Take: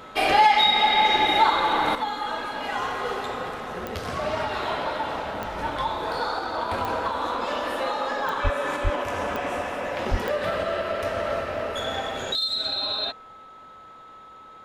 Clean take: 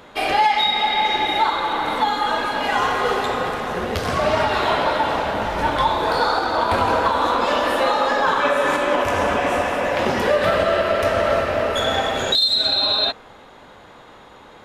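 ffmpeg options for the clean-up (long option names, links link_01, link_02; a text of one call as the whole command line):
ffmpeg -i in.wav -filter_complex "[0:a]adeclick=threshold=4,bandreject=frequency=1300:width=30,asplit=3[link_01][link_02][link_03];[link_01]afade=type=out:start_time=8.43:duration=0.02[link_04];[link_02]highpass=frequency=140:width=0.5412,highpass=frequency=140:width=1.3066,afade=type=in:start_time=8.43:duration=0.02,afade=type=out:start_time=8.55:duration=0.02[link_05];[link_03]afade=type=in:start_time=8.55:duration=0.02[link_06];[link_04][link_05][link_06]amix=inputs=3:normalize=0,asplit=3[link_07][link_08][link_09];[link_07]afade=type=out:start_time=8.83:duration=0.02[link_10];[link_08]highpass=frequency=140:width=0.5412,highpass=frequency=140:width=1.3066,afade=type=in:start_time=8.83:duration=0.02,afade=type=out:start_time=8.95:duration=0.02[link_11];[link_09]afade=type=in:start_time=8.95:duration=0.02[link_12];[link_10][link_11][link_12]amix=inputs=3:normalize=0,asplit=3[link_13][link_14][link_15];[link_13]afade=type=out:start_time=10.1:duration=0.02[link_16];[link_14]highpass=frequency=140:width=0.5412,highpass=frequency=140:width=1.3066,afade=type=in:start_time=10.1:duration=0.02,afade=type=out:start_time=10.22:duration=0.02[link_17];[link_15]afade=type=in:start_time=10.22:duration=0.02[link_18];[link_16][link_17][link_18]amix=inputs=3:normalize=0,asetnsamples=nb_out_samples=441:pad=0,asendcmd='1.95 volume volume 8.5dB',volume=0dB" out.wav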